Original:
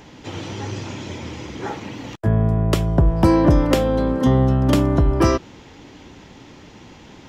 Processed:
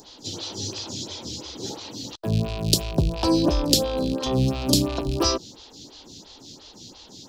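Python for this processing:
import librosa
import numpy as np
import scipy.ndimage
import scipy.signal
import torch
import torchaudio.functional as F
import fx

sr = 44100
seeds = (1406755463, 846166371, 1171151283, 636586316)

y = fx.rattle_buzz(x, sr, strikes_db=-24.0, level_db=-23.0)
y = fx.high_shelf_res(y, sr, hz=3000.0, db=12.5, q=3.0)
y = fx.stagger_phaser(y, sr, hz=2.9)
y = y * 10.0 ** (-3.0 / 20.0)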